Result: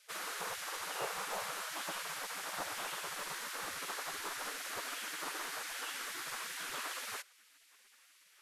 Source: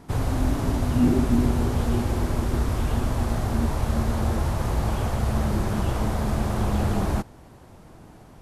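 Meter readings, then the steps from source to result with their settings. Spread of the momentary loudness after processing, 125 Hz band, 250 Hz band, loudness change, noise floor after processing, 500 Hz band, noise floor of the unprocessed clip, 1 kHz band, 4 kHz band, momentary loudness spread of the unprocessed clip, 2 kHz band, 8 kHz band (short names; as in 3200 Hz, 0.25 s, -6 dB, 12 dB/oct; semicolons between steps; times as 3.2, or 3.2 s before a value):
2 LU, under -40 dB, -33.0 dB, -15.0 dB, -65 dBFS, -17.5 dB, -48 dBFS, -10.0 dB, -1.0 dB, 5 LU, -2.0 dB, -1.0 dB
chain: spectral gate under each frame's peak -25 dB weak; short-mantissa float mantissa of 4-bit; gain -1 dB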